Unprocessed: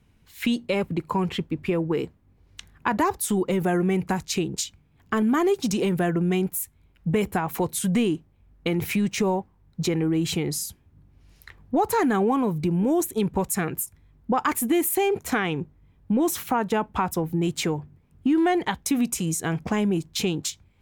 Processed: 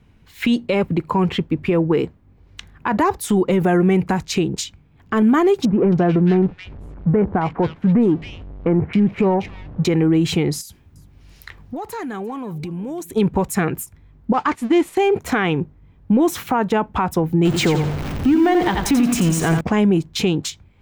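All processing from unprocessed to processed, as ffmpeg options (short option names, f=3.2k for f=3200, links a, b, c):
-filter_complex "[0:a]asettb=1/sr,asplit=3[a][b][c];[a]atrim=end=5.654[d];[b]atrim=start=5.65:end=9.85,asetpts=PTS-STARTPTS,afade=t=in:d=0.004:c=qsin,afade=t=out:st=4.196:d=0.004:c=qsin,aeval=exprs='val(0)+0.5*0.0126*sgn(val(0))':c=same,adynamicsmooth=sensitivity=1:basefreq=1k,acrossover=split=2000[e][f];[f]adelay=270[g];[e][g]amix=inputs=2:normalize=0,atrim=end_sample=185220[h];[c]atrim=start=9.846[i];[d][h]acrossfade=d=0.004:c1=hsin:c2=qsin[j];[j][i]acrossfade=d=0.004:c1=qsin:c2=hsin,asettb=1/sr,asplit=3[k][l][m];[k]atrim=end=10.614[n];[l]atrim=start=10.61:end=13.1,asetpts=PTS-STARTPTS,afade=t=in:d=0.004:c=qsin,afade=t=out:st=2.486:d=0.004:c=qsin,highshelf=f=2.6k:g=9,acompressor=threshold=-35dB:ratio=5:attack=3.2:release=140:knee=1:detection=peak,aecho=1:1:347:0.0891,atrim=end_sample=109809[o];[m]atrim=start=13.096[p];[n][o]acrossfade=d=0.004:c1=hsin:c2=qsin[q];[q][p]acrossfade=d=0.004:c1=qsin:c2=hsin,asettb=1/sr,asplit=3[r][s][t];[r]atrim=end=14.334[u];[s]atrim=start=14.33:end=14.97,asetpts=PTS-STARTPTS,afade=t=in:d=0.004:c=qsin,afade=t=out:st=0.636:d=0.004:c=qsin,aeval=exprs='val(0)+0.5*0.0266*sgn(val(0))':c=same,agate=range=-33dB:threshold=-19dB:ratio=3:release=100:detection=peak,lowpass=6.8k[v];[t]atrim=start=14.966[w];[u][v]acrossfade=d=0.004:c1=hsin:c2=qsin[x];[x][w]acrossfade=d=0.004:c1=qsin:c2=hsin,asettb=1/sr,asplit=3[y][z][aa];[y]atrim=end=17.454[ab];[z]atrim=start=17.45:end=19.61,asetpts=PTS-STARTPTS,afade=t=in:d=0.004:c=qsin,afade=t=out:st=2.156:d=0.004:c=qsin,aeval=exprs='val(0)+0.5*0.0376*sgn(val(0))':c=same,aecho=1:1:87|174|261|348:0.422|0.16|0.0609|0.0231,atrim=end_sample=95256[ac];[aa]atrim=start=19.606[ad];[ab][ac]acrossfade=d=0.004:c1=hsin:c2=qsin[ae];[ae][ad]acrossfade=d=0.004:c1=qsin:c2=hsin,equalizer=f=12k:w=0.37:g=-10.5,alimiter=limit=-17dB:level=0:latency=1:release=77,volume=8dB"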